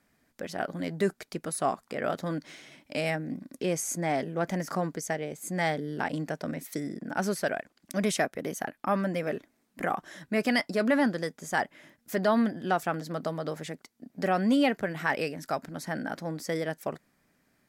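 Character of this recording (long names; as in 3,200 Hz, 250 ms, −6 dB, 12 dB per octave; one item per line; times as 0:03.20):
background noise floor −72 dBFS
spectral slope −5.0 dB per octave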